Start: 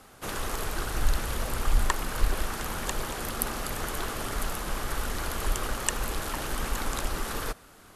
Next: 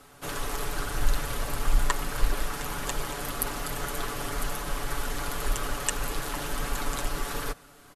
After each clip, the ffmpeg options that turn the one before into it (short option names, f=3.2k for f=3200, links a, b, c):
-af "aecho=1:1:7:0.65,volume=-1.5dB"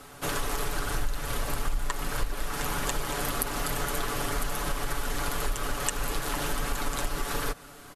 -af "acompressor=threshold=-31dB:ratio=4,volume=5.5dB"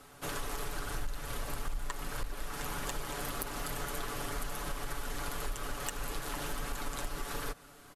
-af "aeval=exprs='clip(val(0),-1,0.1)':c=same,volume=-7.5dB"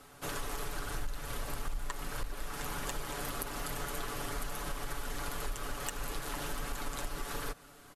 -ar 48000 -c:a libmp3lame -b:a 96k